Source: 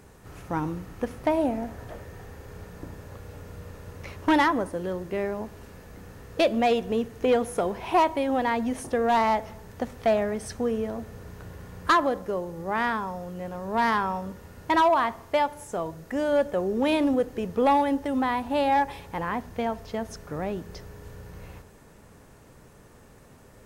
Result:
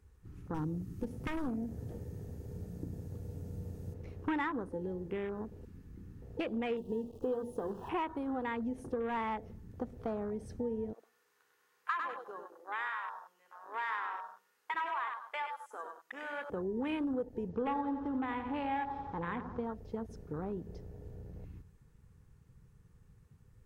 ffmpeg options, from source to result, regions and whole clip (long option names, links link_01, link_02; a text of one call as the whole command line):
ffmpeg -i in.wav -filter_complex "[0:a]asettb=1/sr,asplit=3[link_01][link_02][link_03];[link_01]atrim=end=0.544[link_04];[link_02]atrim=start=0.54:end=3.94,asetpts=PTS-STARTPTS,afade=type=in:duration=0.004:curve=qsin,afade=type=out:start_time=3.396:duration=0.004:curve=qsin,highpass=frequency=190:poles=1,aeval=exprs='0.0794*(abs(mod(val(0)/0.0794+3,4)-2)-1)':channel_layout=same,bass=frequency=250:gain=12,treble=frequency=4000:gain=12[link_05];[link_03]atrim=start=3.936[link_06];[link_04][link_05]acrossfade=duration=0.004:curve1=hsin:curve2=qsin[link_07];[link_07][link_06]acrossfade=duration=0.004:curve1=qsin:curve2=hsin,asettb=1/sr,asplit=3[link_08][link_09][link_10];[link_08]atrim=end=6.774[link_11];[link_09]atrim=start=6.77:end=7.89,asetpts=PTS-STARTPTS,afade=type=in:duration=0.004:curve=qsin,afade=type=out:start_time=1.116:duration=0.004:curve=qsin,bandreject=frequency=60:width_type=h:width=6,bandreject=frequency=120:width_type=h:width=6,bandreject=frequency=180:width_type=h:width=6,bandreject=frequency=240:width_type=h:width=6,bandreject=frequency=300:width_type=h:width=6,bandreject=frequency=360:width_type=h:width=6,bandreject=frequency=420:width_type=h:width=6,bandreject=frequency=480:width_type=h:width=6,acrusher=bits=8:dc=4:mix=0:aa=0.000001,asuperstop=centerf=1800:order=12:qfactor=1.3[link_12];[link_10]atrim=start=7.886[link_13];[link_11][link_12]acrossfade=duration=0.004:curve1=hsin:curve2=qsin[link_14];[link_14][link_13]acrossfade=duration=0.004:curve1=qsin:curve2=hsin,asettb=1/sr,asplit=3[link_15][link_16][link_17];[link_15]atrim=end=10.934[link_18];[link_16]atrim=start=10.93:end=16.5,asetpts=PTS-STARTPTS,afade=type=in:duration=0.004:curve=qsin,afade=type=out:start_time=5.566:duration=0.004:curve=qsin,highpass=900,aecho=1:1:98|196|294|392:0.531|0.165|0.051|0.0158,atrim=end_sample=245637[link_19];[link_17]atrim=start=16.496[link_20];[link_18][link_19]acrossfade=duration=0.004:curve1=hsin:curve2=qsin[link_21];[link_21][link_20]acrossfade=duration=0.004:curve1=qsin:curve2=hsin,asettb=1/sr,asplit=3[link_22][link_23][link_24];[link_22]atrim=end=17.494[link_25];[link_23]atrim=start=17.49:end=19.65,asetpts=PTS-STARTPTS,afade=type=in:duration=0.004:curve=qsin,afade=type=out:start_time=2.156:duration=0.004:curve=qsin,lowpass=frequency=6400:width=0.5412,lowpass=frequency=6400:width=1.3066,aecho=1:1:88|176|264|352|440|528|616:0.355|0.209|0.124|0.0729|0.043|0.0254|0.015,atrim=end_sample=95256[link_26];[link_24]atrim=start=19.646[link_27];[link_25][link_26]acrossfade=duration=0.004:curve1=hsin:curve2=qsin[link_28];[link_28][link_27]acrossfade=duration=0.004:curve1=qsin:curve2=hsin,superequalizer=8b=0.316:9b=0.708,acompressor=threshold=-31dB:ratio=2.5,afwtdn=0.0112,volume=-4dB" out.wav